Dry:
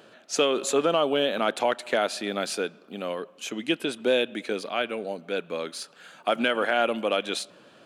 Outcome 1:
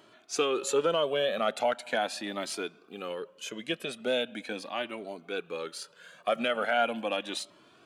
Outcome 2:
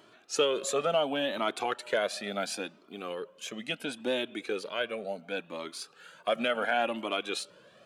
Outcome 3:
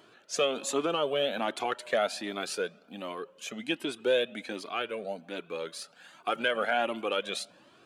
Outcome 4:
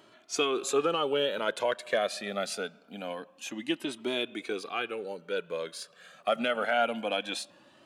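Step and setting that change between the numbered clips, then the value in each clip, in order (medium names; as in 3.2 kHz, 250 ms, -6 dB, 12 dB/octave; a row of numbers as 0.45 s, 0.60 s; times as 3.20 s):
Shepard-style flanger, rate: 0.4 Hz, 0.71 Hz, 1.3 Hz, 0.25 Hz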